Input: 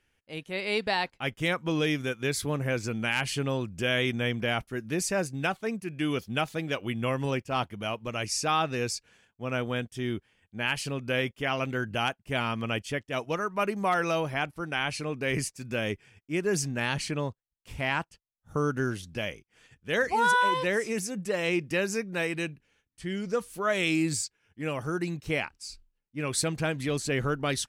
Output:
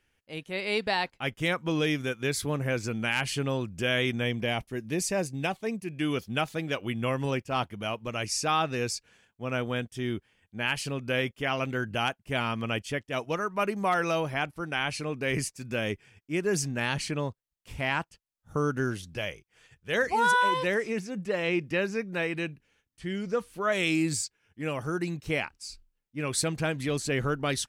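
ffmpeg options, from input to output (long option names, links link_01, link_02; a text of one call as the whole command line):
ffmpeg -i in.wav -filter_complex "[0:a]asettb=1/sr,asplit=3[link_01][link_02][link_03];[link_01]atrim=end=4.244[link_04];[link_02]atrim=start=4.24:end=6,asetpts=PTS-STARTPTS,afade=type=in:duration=0.004:curve=qsin,afade=type=out:start_time=1.756:duration=0.004:curve=qsin,equalizer=frequency=1400:width_type=o:width=0.4:gain=-8.5[link_05];[link_03]atrim=start=5.996[link_06];[link_04][link_05]acrossfade=duration=0.004:curve1=hsin:curve2=qsin[link_07];[link_07][link_06]acrossfade=duration=0.004:curve1=qsin:curve2=hsin,asettb=1/sr,asplit=3[link_08][link_09][link_10];[link_08]atrim=end=19.164[link_11];[link_09]atrim=start=19.16:end=19.95,asetpts=PTS-STARTPTS,afade=type=in:duration=0.004:curve=qsin,afade=type=out:start_time=0.786:duration=0.004:curve=qsin,equalizer=frequency=250:width_type=o:width=0.48:gain=-10.5[link_12];[link_10]atrim=start=19.946[link_13];[link_11][link_12]acrossfade=duration=0.004:curve1=hsin:curve2=qsin[link_14];[link_14][link_13]acrossfade=duration=0.004:curve1=qsin:curve2=hsin,asettb=1/sr,asplit=3[link_15][link_16][link_17];[link_15]atrim=end=20.744[link_18];[link_16]atrim=start=20.74:end=23.72,asetpts=PTS-STARTPTS,afade=type=in:duration=0.004:curve=qsin,afade=type=out:start_time=2.976:duration=0.004:curve=qsin,acrossover=split=4300[link_19][link_20];[link_20]acompressor=threshold=-55dB:ratio=4:attack=1:release=60[link_21];[link_19][link_21]amix=inputs=2:normalize=0[link_22];[link_17]atrim=start=23.716[link_23];[link_18][link_22]acrossfade=duration=0.004:curve1=hsin:curve2=qsin[link_24];[link_24][link_23]acrossfade=duration=0.004:curve1=qsin:curve2=hsin" out.wav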